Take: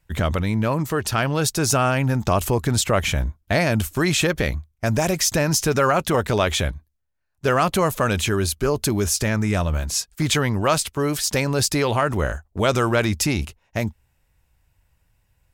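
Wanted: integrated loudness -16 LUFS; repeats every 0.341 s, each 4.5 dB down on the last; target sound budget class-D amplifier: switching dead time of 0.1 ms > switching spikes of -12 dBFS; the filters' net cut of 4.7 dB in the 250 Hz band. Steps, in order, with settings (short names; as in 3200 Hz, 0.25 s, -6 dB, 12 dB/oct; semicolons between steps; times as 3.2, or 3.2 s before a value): bell 250 Hz -7 dB; feedback echo 0.341 s, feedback 60%, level -4.5 dB; switching dead time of 0.1 ms; switching spikes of -12 dBFS; gain +4.5 dB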